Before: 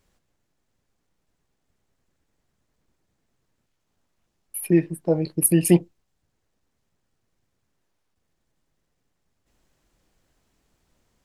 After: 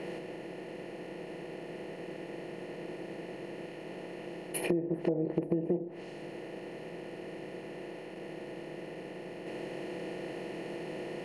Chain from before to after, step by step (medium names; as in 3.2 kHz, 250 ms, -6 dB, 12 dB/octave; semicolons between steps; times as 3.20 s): spectral levelling over time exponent 0.4; treble shelf 4.4 kHz +7.5 dB; level-controlled noise filter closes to 2.7 kHz, open at -15 dBFS; tone controls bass -11 dB, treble -11 dB; low-pass that closes with the level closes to 590 Hz, closed at -16.5 dBFS; compression 16:1, threshold -26 dBFS, peak gain reduction 14 dB